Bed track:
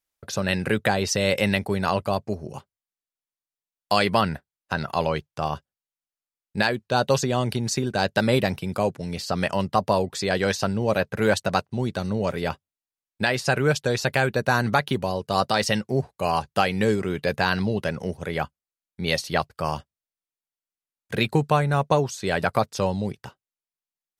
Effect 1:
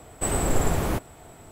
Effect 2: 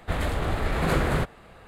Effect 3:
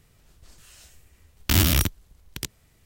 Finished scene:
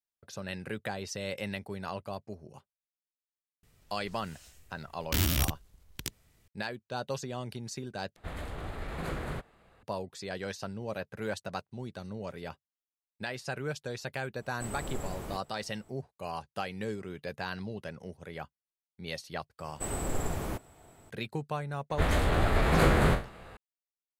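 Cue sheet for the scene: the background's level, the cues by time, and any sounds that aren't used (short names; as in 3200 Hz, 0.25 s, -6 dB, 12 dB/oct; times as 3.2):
bed track -14.5 dB
3.63 add 3 -5 dB + limiter -7 dBFS
8.16 replace with 2 -12.5 dB
14.39 add 1 -15 dB
19.59 add 1 -9.5 dB
21.9 add 2 -1 dB + spectral trails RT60 0.32 s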